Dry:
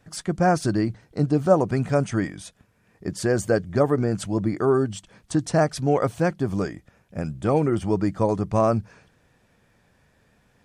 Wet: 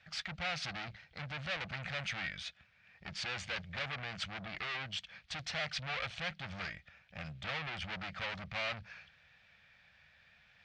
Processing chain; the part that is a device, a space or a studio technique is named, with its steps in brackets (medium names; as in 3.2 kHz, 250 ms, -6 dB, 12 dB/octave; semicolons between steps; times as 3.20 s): scooped metal amplifier (valve stage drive 33 dB, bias 0.55; cabinet simulation 88–4100 Hz, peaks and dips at 110 Hz -9 dB, 410 Hz -10 dB, 1 kHz -8 dB, 2.3 kHz +4 dB; amplifier tone stack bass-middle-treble 10-0-10); trim +9.5 dB